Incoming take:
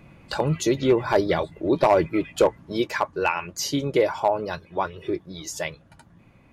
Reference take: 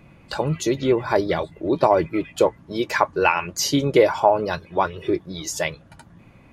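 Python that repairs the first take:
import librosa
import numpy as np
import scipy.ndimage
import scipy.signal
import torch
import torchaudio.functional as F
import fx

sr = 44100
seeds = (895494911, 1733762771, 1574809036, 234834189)

y = fx.fix_declip(x, sr, threshold_db=-10.0)
y = fx.fix_level(y, sr, at_s=2.87, step_db=5.0)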